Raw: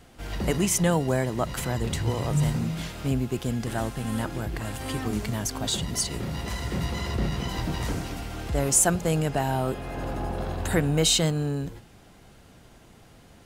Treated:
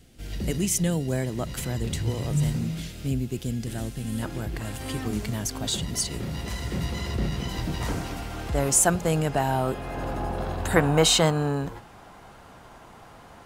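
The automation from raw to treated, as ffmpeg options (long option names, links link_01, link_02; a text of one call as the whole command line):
ffmpeg -i in.wav -af "asetnsamples=nb_out_samples=441:pad=0,asendcmd='1.12 equalizer g -8.5;2.8 equalizer g -14.5;4.22 equalizer g -3.5;7.81 equalizer g 3;10.76 equalizer g 13',equalizer=frequency=1000:width_type=o:width=1.6:gain=-14.5" out.wav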